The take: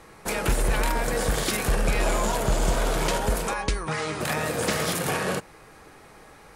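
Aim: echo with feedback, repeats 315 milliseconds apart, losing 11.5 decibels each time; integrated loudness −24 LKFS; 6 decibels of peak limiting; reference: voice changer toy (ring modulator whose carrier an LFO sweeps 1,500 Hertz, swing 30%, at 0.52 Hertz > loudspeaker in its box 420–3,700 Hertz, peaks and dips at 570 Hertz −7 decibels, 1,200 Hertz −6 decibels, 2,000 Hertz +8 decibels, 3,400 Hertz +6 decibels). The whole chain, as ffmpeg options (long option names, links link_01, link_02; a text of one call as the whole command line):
ffmpeg -i in.wav -af "alimiter=limit=-18dB:level=0:latency=1,aecho=1:1:315|630|945:0.266|0.0718|0.0194,aeval=exprs='val(0)*sin(2*PI*1500*n/s+1500*0.3/0.52*sin(2*PI*0.52*n/s))':channel_layout=same,highpass=420,equalizer=frequency=570:width_type=q:width=4:gain=-7,equalizer=frequency=1200:width_type=q:width=4:gain=-6,equalizer=frequency=2000:width_type=q:width=4:gain=8,equalizer=frequency=3400:width_type=q:width=4:gain=6,lowpass=frequency=3700:width=0.5412,lowpass=frequency=3700:width=1.3066,volume=1.5dB" out.wav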